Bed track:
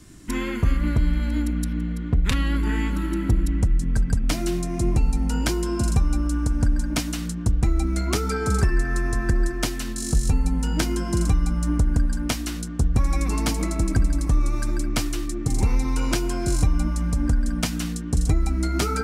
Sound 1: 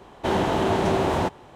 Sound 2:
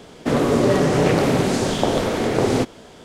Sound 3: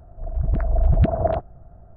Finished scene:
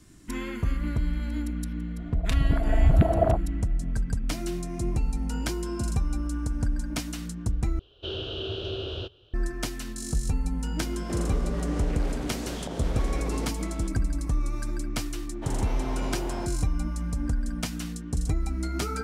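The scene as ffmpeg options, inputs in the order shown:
-filter_complex "[1:a]asplit=2[s0][s1];[0:a]volume=0.473[s2];[s0]firequalizer=gain_entry='entry(110,0);entry(170,-22);entry(390,-4);entry(610,-12);entry(880,-28);entry(1400,-9);entry(2000,-28);entry(2900,9);entry(7700,-26)':delay=0.05:min_phase=1[s3];[2:a]acompressor=threshold=0.0398:ratio=6:attack=3.2:release=140:knee=1:detection=peak[s4];[s2]asplit=2[s5][s6];[s5]atrim=end=7.794[s7];[s3]atrim=end=1.55,asetpts=PTS-STARTPTS,volume=0.596[s8];[s6]atrim=start=9.336[s9];[3:a]atrim=end=1.96,asetpts=PTS-STARTPTS,volume=0.841,afade=t=in:d=0.004:c=hsin,afade=t=out:st=1.956:d=0.004:c=hsin,adelay=1970[s10];[s4]atrim=end=3.04,asetpts=PTS-STARTPTS,volume=0.596,afade=t=in:d=0.004:c=hsin,afade=t=out:st=3.036:d=0.004:c=hsin,adelay=10840[s11];[s1]atrim=end=1.55,asetpts=PTS-STARTPTS,volume=0.188,afade=t=in:d=0.004:c=hsin,afade=t=out:st=1.546:d=0.004:c=hsin,adelay=15180[s12];[s7][s8]acrossfade=d=0.004:c1=hsin:c2=hsin[s13];[s13][s9]acrossfade=d=0.004:c1=hsin:c2=hsin[s14];[s14][s10][s11][s12]amix=inputs=4:normalize=0"

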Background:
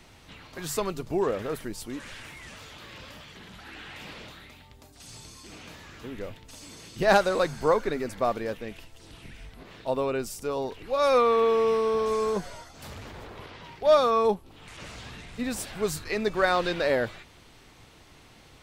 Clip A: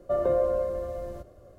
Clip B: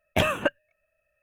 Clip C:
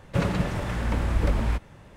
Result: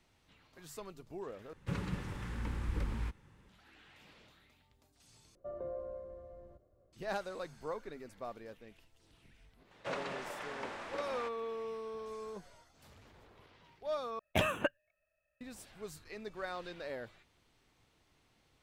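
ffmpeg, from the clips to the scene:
-filter_complex "[3:a]asplit=2[s0][s1];[0:a]volume=0.126[s2];[s0]equalizer=f=640:t=o:w=0.36:g=-14.5[s3];[1:a]lowpass=f=1400:p=1[s4];[s1]highpass=510,lowpass=6700[s5];[s2]asplit=4[s6][s7][s8][s9];[s6]atrim=end=1.534[s10];[s3]atrim=end=1.96,asetpts=PTS-STARTPTS,volume=0.237[s11];[s7]atrim=start=3.486:end=5.354[s12];[s4]atrim=end=1.58,asetpts=PTS-STARTPTS,volume=0.141[s13];[s8]atrim=start=6.926:end=14.194[s14];[2:a]atrim=end=1.22,asetpts=PTS-STARTPTS,volume=0.398[s15];[s9]atrim=start=15.406[s16];[s5]atrim=end=1.96,asetpts=PTS-STARTPTS,volume=0.398,afade=t=in:d=0.004:c=hsin,afade=t=out:st=1.956:d=0.004:c=hsin,adelay=9710[s17];[s10][s11]acrossfade=d=0.004:c1=hsin:c2=hsin[s18];[s18][s12]acrossfade=d=0.004:c1=hsin:c2=hsin[s19];[s19][s13]acrossfade=d=0.004:c1=hsin:c2=hsin[s20];[s20][s14]acrossfade=d=0.004:c1=hsin:c2=hsin[s21];[s21][s15]acrossfade=d=0.004:c1=hsin:c2=hsin[s22];[s22][s16]acrossfade=d=0.004:c1=hsin:c2=hsin[s23];[s23][s17]amix=inputs=2:normalize=0"

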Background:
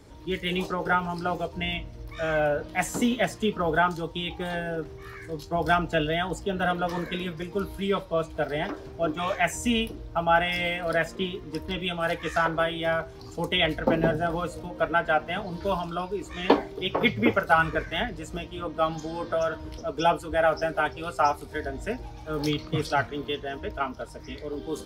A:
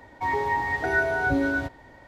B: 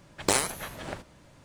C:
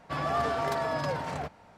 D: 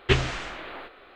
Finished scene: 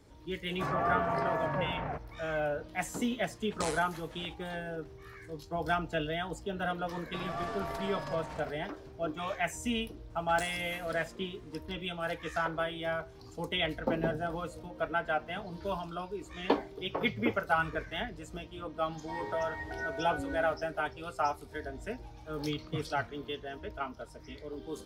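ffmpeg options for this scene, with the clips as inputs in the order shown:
-filter_complex "[3:a]asplit=2[s0][s1];[2:a]asplit=2[s2][s3];[0:a]volume=0.398[s4];[s0]lowpass=f=2300:w=0.5412,lowpass=f=2300:w=1.3066[s5];[s2]acrossover=split=10000[s6][s7];[s7]acompressor=threshold=0.00398:ratio=4:attack=1:release=60[s8];[s6][s8]amix=inputs=2:normalize=0[s9];[s1]aeval=exprs='if(lt(val(0),0),0.708*val(0),val(0))':c=same[s10];[s3]acrossover=split=2300|6700[s11][s12][s13];[s11]acompressor=threshold=0.00891:ratio=4[s14];[s12]acompressor=threshold=0.00631:ratio=4[s15];[s13]acompressor=threshold=0.0141:ratio=4[s16];[s14][s15][s16]amix=inputs=3:normalize=0[s17];[s5]atrim=end=1.77,asetpts=PTS-STARTPTS,volume=0.794,afade=t=in:d=0.004:c=hsin,afade=t=out:st=1.766:d=0.004:c=hsin,adelay=500[s18];[s9]atrim=end=1.44,asetpts=PTS-STARTPTS,volume=0.251,afade=t=in:d=0.004:c=hsin,afade=t=out:st=1.436:d=0.004:c=hsin,adelay=3320[s19];[s10]atrim=end=1.77,asetpts=PTS-STARTPTS,volume=0.422,afade=t=in:d=0.004:c=hsin,afade=t=out:st=1.766:d=0.004:c=hsin,adelay=7030[s20];[s17]atrim=end=1.44,asetpts=PTS-STARTPTS,volume=0.376,afade=t=in:d=0.004:c=hsin,afade=t=out:st=1.436:d=0.004:c=hsin,adelay=445410S[s21];[1:a]atrim=end=2.07,asetpts=PTS-STARTPTS,volume=0.188,afade=t=in:d=0.004:c=hsin,afade=t=out:st=2.066:d=0.004:c=hsin,adelay=18870[s22];[s4][s18][s19][s20][s21][s22]amix=inputs=6:normalize=0"

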